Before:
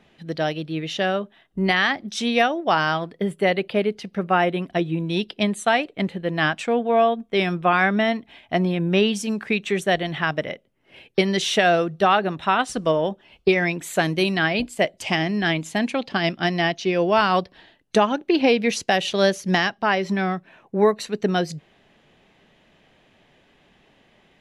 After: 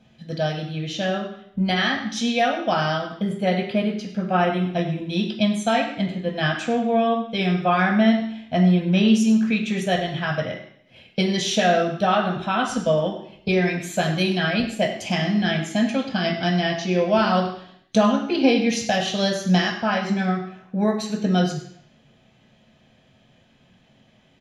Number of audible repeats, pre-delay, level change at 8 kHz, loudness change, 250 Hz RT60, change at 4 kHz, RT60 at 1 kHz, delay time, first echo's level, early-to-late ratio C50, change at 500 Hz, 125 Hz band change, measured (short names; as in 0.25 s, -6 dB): 1, 3 ms, +1.0 dB, 0.0 dB, 0.70 s, 0.0 dB, 0.70 s, 0.101 s, -12.5 dB, 6.5 dB, -1.5 dB, +3.5 dB